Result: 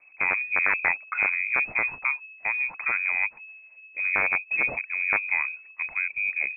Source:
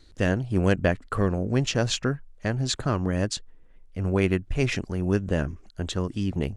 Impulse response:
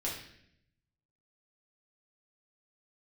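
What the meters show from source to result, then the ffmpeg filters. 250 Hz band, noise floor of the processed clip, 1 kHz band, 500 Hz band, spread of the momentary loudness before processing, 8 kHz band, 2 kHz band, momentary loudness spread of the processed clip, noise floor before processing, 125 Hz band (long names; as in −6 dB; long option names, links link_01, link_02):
−23.5 dB, −53 dBFS, +2.0 dB, −15.0 dB, 8 LU, below −40 dB, +12.0 dB, 7 LU, −52 dBFS, below −25 dB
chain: -af "aeval=exprs='(mod(3.76*val(0)+1,2)-1)/3.76':channel_layout=same,lowpass=frequency=2200:width_type=q:width=0.5098,lowpass=frequency=2200:width_type=q:width=0.6013,lowpass=frequency=2200:width_type=q:width=0.9,lowpass=frequency=2200:width_type=q:width=2.563,afreqshift=-2600,volume=-1dB"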